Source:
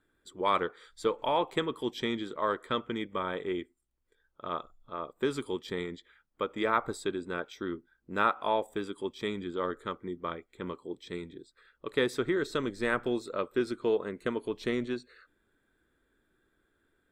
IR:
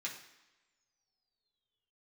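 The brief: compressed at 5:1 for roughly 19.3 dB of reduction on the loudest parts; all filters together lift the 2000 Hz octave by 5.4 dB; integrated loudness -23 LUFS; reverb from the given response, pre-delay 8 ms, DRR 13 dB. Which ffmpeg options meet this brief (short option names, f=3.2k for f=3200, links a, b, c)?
-filter_complex "[0:a]equalizer=f=2k:t=o:g=7,acompressor=threshold=-42dB:ratio=5,asplit=2[a][b];[1:a]atrim=start_sample=2205,adelay=8[c];[b][c]afir=irnorm=-1:irlink=0,volume=-13.5dB[d];[a][d]amix=inputs=2:normalize=0,volume=22.5dB"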